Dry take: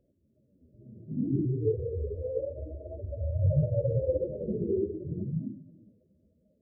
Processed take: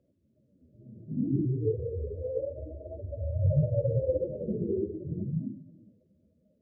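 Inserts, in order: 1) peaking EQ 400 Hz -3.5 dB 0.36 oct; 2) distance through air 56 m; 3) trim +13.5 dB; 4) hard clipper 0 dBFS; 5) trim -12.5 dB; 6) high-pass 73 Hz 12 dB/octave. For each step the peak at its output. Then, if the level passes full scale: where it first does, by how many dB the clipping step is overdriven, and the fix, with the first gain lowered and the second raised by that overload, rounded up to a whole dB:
-15.0 dBFS, -15.0 dBFS, -1.5 dBFS, -1.5 dBFS, -14.0 dBFS, -14.5 dBFS; nothing clips

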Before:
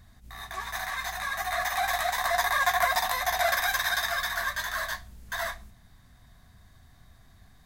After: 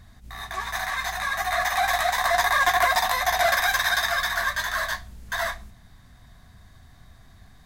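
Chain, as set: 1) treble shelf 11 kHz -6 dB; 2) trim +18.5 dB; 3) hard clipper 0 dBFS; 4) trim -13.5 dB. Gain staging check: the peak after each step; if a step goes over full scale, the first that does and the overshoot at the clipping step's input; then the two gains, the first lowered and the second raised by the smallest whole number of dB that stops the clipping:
-12.0 dBFS, +6.5 dBFS, 0.0 dBFS, -13.5 dBFS; step 2, 6.5 dB; step 2 +11.5 dB, step 4 -6.5 dB

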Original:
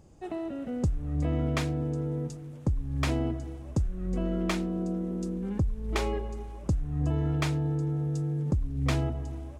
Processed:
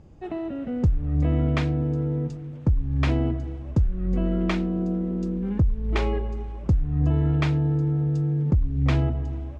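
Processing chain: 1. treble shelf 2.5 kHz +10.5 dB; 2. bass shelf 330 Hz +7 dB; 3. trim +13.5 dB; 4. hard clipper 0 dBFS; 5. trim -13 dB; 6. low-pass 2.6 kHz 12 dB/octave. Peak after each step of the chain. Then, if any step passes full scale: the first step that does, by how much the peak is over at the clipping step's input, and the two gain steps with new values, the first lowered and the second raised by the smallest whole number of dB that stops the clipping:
-10.5 dBFS, -8.0 dBFS, +5.5 dBFS, 0.0 dBFS, -13.0 dBFS, -13.0 dBFS; step 3, 5.5 dB; step 3 +7.5 dB, step 5 -7 dB

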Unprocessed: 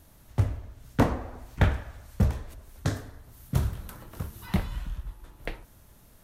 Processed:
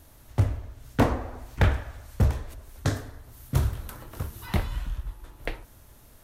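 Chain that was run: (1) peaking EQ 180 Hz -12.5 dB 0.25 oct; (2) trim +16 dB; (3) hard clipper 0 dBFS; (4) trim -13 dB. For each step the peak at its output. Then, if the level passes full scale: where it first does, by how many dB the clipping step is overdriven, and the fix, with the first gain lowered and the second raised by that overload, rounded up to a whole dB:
-9.0 dBFS, +7.0 dBFS, 0.0 dBFS, -13.0 dBFS; step 2, 7.0 dB; step 2 +9 dB, step 4 -6 dB

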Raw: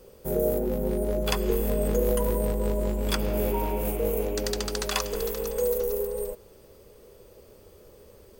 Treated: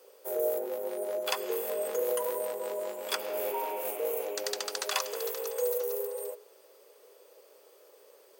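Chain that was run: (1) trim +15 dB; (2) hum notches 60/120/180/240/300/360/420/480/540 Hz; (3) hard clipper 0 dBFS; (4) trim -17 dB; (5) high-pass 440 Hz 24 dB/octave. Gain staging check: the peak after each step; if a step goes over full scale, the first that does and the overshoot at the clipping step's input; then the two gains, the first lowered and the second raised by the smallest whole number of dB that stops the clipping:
+6.0 dBFS, +6.5 dBFS, 0.0 dBFS, -17.0 dBFS, -13.5 dBFS; step 1, 6.5 dB; step 1 +8 dB, step 4 -10 dB

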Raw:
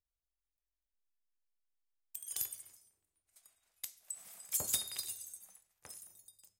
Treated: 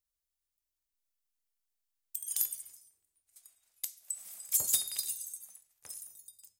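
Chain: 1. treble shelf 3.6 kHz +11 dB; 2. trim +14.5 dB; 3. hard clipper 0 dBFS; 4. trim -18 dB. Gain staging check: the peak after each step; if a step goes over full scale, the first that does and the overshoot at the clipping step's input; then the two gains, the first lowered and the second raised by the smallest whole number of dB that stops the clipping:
-7.5 dBFS, +7.0 dBFS, 0.0 dBFS, -18.0 dBFS; step 2, 7.0 dB; step 2 +7.5 dB, step 4 -11 dB

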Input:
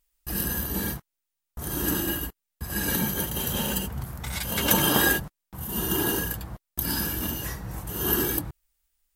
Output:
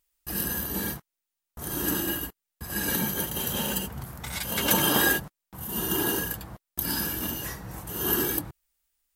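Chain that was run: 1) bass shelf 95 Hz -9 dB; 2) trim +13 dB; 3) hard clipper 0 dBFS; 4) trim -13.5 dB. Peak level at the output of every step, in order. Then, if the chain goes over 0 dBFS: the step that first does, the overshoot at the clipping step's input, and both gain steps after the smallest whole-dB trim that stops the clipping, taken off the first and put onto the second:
-4.5 dBFS, +8.5 dBFS, 0.0 dBFS, -13.5 dBFS; step 2, 8.5 dB; step 2 +4 dB, step 4 -4.5 dB

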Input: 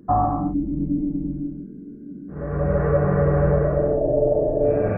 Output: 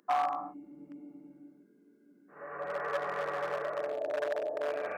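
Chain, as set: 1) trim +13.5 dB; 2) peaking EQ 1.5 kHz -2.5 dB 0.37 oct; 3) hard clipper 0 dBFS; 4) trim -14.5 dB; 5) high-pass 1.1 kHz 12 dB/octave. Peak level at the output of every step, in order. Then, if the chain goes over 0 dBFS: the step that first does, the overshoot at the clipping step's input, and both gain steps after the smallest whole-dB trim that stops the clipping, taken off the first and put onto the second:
+5.5 dBFS, +5.5 dBFS, 0.0 dBFS, -14.5 dBFS, -19.5 dBFS; step 1, 5.5 dB; step 1 +7.5 dB, step 4 -8.5 dB

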